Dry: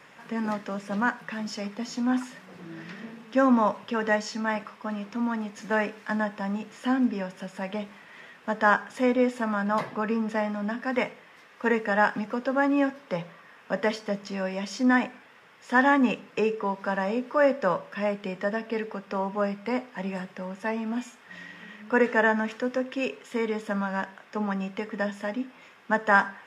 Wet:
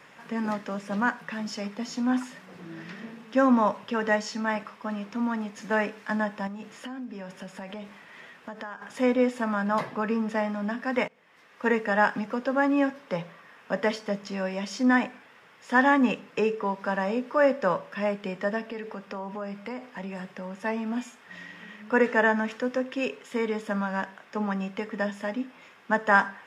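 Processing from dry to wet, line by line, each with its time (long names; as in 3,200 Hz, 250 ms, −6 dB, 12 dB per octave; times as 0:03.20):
0:06.47–0:08.82: downward compressor 10 to 1, threshold −34 dBFS
0:11.08–0:11.66: fade in, from −20.5 dB
0:18.68–0:20.61: downward compressor 4 to 1, threshold −32 dBFS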